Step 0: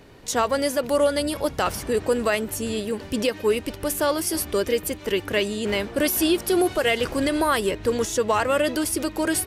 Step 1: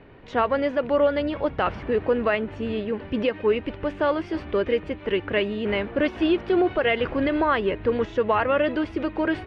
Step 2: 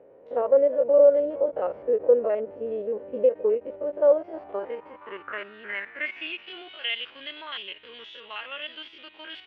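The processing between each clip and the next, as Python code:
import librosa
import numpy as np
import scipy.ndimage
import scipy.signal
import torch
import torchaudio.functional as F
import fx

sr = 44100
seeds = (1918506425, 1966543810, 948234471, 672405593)

y1 = scipy.signal.sosfilt(scipy.signal.butter(4, 2800.0, 'lowpass', fs=sr, output='sos'), x)
y2 = fx.spec_steps(y1, sr, hold_ms=50)
y2 = fx.filter_sweep_bandpass(y2, sr, from_hz=530.0, to_hz=3200.0, start_s=4.02, end_s=6.64, q=5.9)
y2 = fx.end_taper(y2, sr, db_per_s=450.0)
y2 = y2 * librosa.db_to_amplitude(8.5)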